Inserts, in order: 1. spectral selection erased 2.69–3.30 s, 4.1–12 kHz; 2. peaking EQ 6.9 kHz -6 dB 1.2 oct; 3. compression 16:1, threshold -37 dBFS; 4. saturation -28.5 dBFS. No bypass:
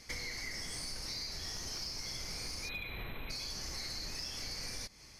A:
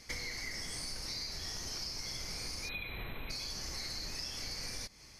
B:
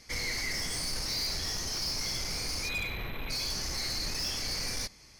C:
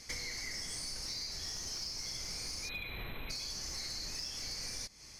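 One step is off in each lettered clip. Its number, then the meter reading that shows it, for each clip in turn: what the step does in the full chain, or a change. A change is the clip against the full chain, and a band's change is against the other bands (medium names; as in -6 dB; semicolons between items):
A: 4, distortion -27 dB; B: 3, mean gain reduction 9.5 dB; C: 2, 8 kHz band +4.5 dB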